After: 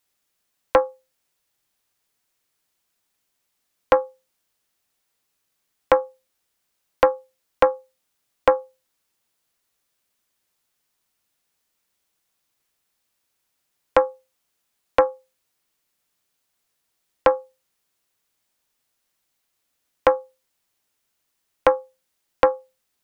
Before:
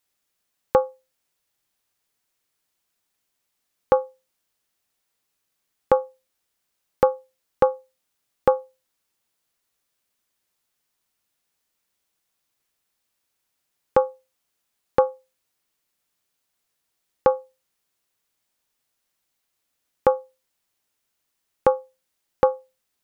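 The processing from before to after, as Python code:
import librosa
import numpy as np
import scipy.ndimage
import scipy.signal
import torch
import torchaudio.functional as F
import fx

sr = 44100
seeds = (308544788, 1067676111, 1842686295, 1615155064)

y = fx.doppler_dist(x, sr, depth_ms=0.78)
y = y * librosa.db_to_amplitude(2.0)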